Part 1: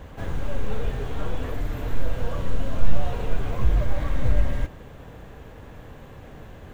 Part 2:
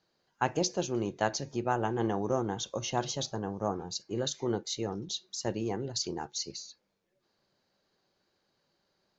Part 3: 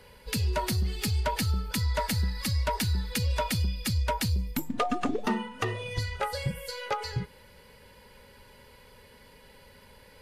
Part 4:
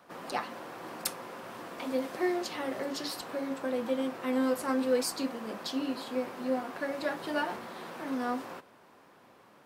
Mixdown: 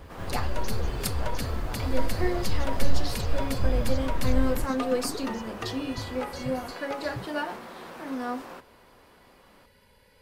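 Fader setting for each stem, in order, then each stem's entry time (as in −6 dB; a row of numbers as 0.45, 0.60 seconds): −5.0, −14.0, −6.0, +0.5 decibels; 0.00, 0.00, 0.00, 0.00 seconds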